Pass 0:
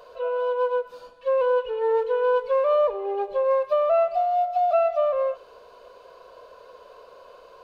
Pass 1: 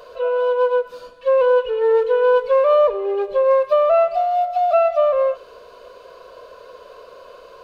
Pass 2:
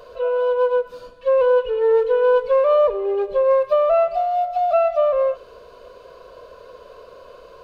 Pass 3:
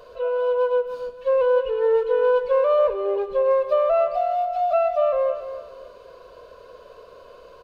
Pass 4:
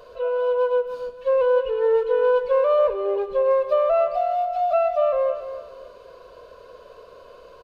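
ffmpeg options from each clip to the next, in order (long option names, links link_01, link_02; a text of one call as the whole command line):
ffmpeg -i in.wav -af "equalizer=frequency=830:width_type=o:width=0.26:gain=-12,volume=7dB" out.wav
ffmpeg -i in.wav -af "lowshelf=frequency=280:gain=9.5,volume=-3dB" out.wav
ffmpeg -i in.wav -af "aecho=1:1:281|562|843:0.266|0.0851|0.0272,volume=-3dB" out.wav
ffmpeg -i in.wav -af "aresample=32000,aresample=44100" out.wav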